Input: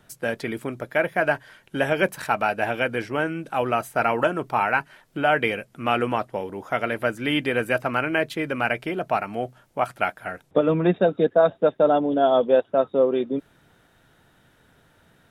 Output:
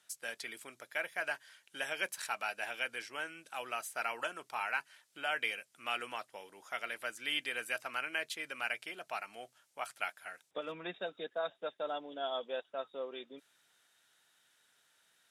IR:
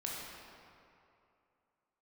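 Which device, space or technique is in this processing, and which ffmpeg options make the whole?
piezo pickup straight into a mixer: -af "lowpass=8400,aderivative,volume=1.12"

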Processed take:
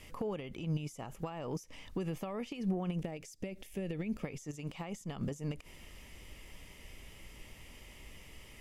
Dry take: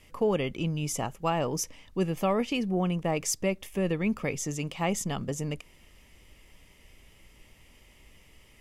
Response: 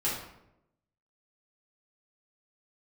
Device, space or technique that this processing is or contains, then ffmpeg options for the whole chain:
de-esser from a sidechain: -filter_complex "[0:a]asplit=2[s0][s1];[s1]highpass=f=4400:p=1,apad=whole_len=379618[s2];[s0][s2]sidechaincompress=threshold=0.00126:ratio=6:attack=2.9:release=59,asettb=1/sr,asplit=3[s3][s4][s5];[s3]atrim=end=2.944[s6];[s4]atrim=start=2.94:end=4.23,asetpts=PTS-STARTPTS,afade=t=in:d=0.004:c=qsin,afade=t=out:st=1.286:d=0.004:c=qsin,equalizer=f=1100:w=2.3:g=-12[s7];[s5]atrim=start=4.226[s8];[s6][s7]acrossfade=d=0.004:c1=hsin:c2=qsin[s9];[s9][s8]acrossfade=d=0.004:c1=qsin:c2=hsin,volume=1.58"

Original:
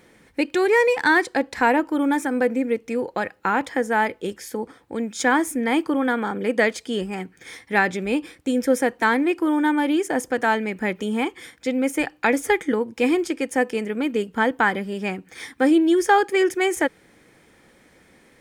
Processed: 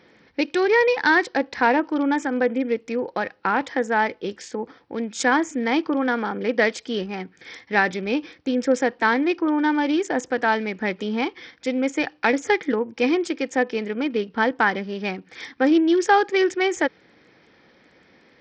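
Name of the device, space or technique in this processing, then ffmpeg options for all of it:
Bluetooth headset: -af "highpass=f=130:p=1,aresample=16000,aresample=44100" -ar 44100 -c:a sbc -b:a 64k

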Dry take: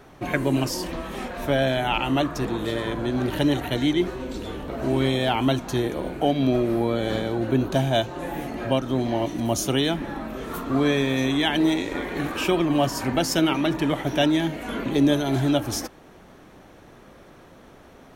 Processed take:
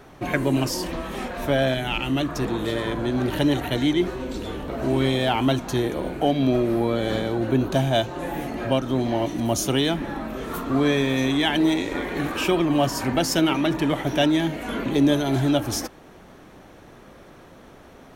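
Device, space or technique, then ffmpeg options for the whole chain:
parallel distortion: -filter_complex "[0:a]asettb=1/sr,asplit=3[s0][s1][s2];[s0]atrim=end=1.744[s3];[s1]atrim=start=1.74:end=2.29,asetpts=PTS-STARTPTS,afade=t=in:d=0.004:c=qsin,afade=t=out:st=0.546:d=0.004:c=qsin,equalizer=f=850:t=o:w=1.5:g=-8.5[s4];[s2]atrim=start=2.286[s5];[s3][s4]acrossfade=d=0.004:c1=hsin:c2=qsin[s6];[s6][s5]acrossfade=d=0.004:c1=qsin:c2=hsin,asplit=2[s7][s8];[s8]asoftclip=type=hard:threshold=0.0501,volume=0.211[s9];[s7][s9]amix=inputs=2:normalize=0"

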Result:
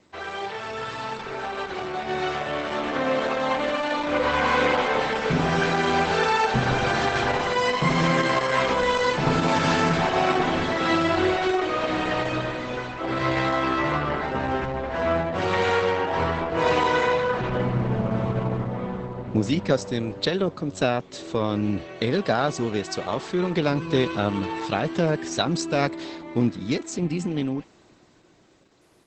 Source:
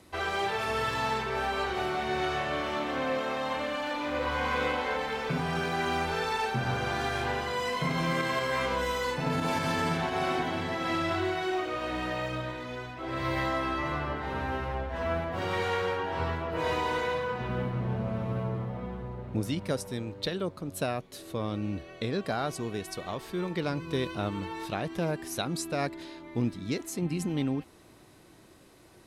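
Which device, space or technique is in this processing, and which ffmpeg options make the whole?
video call: -af "highpass=110,dynaudnorm=f=560:g=9:m=3.55,volume=0.841" -ar 48000 -c:a libopus -b:a 12k

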